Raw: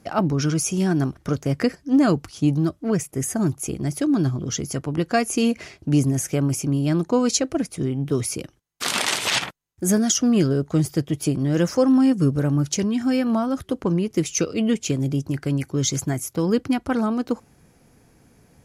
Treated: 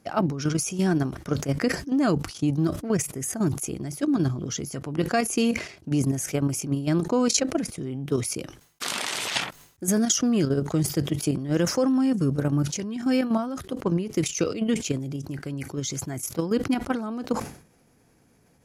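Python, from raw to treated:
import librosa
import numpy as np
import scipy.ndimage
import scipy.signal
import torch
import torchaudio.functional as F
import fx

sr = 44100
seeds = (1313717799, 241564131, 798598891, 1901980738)

y = fx.level_steps(x, sr, step_db=10)
y = fx.low_shelf(y, sr, hz=99.0, db=-6.0)
y = fx.sustainer(y, sr, db_per_s=110.0)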